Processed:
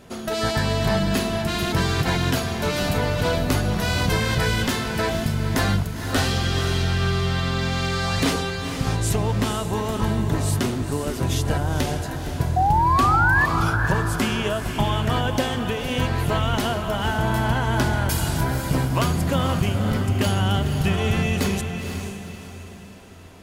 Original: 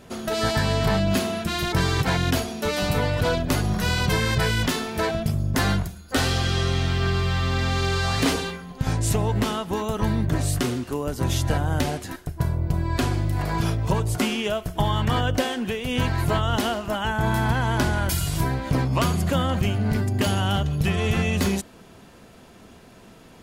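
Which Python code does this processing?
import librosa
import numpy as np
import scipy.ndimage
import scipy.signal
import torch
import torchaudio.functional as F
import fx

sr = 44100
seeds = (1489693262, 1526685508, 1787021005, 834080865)

y = fx.spec_paint(x, sr, seeds[0], shape='rise', start_s=12.56, length_s=0.9, low_hz=720.0, high_hz=1800.0, level_db=-19.0)
y = fx.echo_diffused(y, sr, ms=494, feedback_pct=41, wet_db=-7)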